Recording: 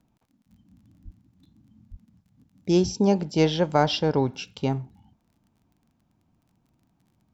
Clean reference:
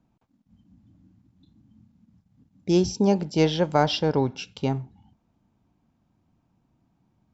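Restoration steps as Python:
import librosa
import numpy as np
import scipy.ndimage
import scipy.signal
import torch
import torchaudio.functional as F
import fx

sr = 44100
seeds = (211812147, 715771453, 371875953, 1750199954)

y = fx.fix_declick_ar(x, sr, threshold=6.5)
y = fx.highpass(y, sr, hz=140.0, slope=24, at=(1.04, 1.16), fade=0.02)
y = fx.highpass(y, sr, hz=140.0, slope=24, at=(1.9, 2.02), fade=0.02)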